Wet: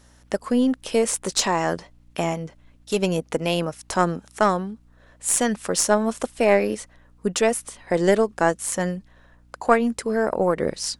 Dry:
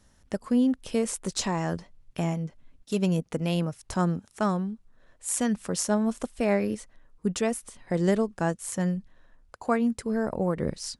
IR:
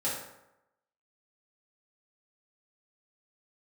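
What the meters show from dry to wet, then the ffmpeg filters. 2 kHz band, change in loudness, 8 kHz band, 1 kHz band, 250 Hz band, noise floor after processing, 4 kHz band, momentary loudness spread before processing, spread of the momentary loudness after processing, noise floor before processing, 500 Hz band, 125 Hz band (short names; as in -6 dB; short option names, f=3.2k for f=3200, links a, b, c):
+9.5 dB, +5.5 dB, +8.0 dB, +9.0 dB, +1.5 dB, -55 dBFS, +8.5 dB, 10 LU, 10 LU, -62 dBFS, +8.0 dB, -1.0 dB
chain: -af "bass=f=250:g=-13,treble=f=4k:g=-1,aeval=exprs='val(0)+0.000708*(sin(2*PI*60*n/s)+sin(2*PI*2*60*n/s)/2+sin(2*PI*3*60*n/s)/3+sin(2*PI*4*60*n/s)/4+sin(2*PI*5*60*n/s)/5)':c=same,aeval=exprs='0.237*(cos(1*acos(clip(val(0)/0.237,-1,1)))-cos(1*PI/2))+0.0376*(cos(2*acos(clip(val(0)/0.237,-1,1)))-cos(2*PI/2))':c=same,volume=9dB"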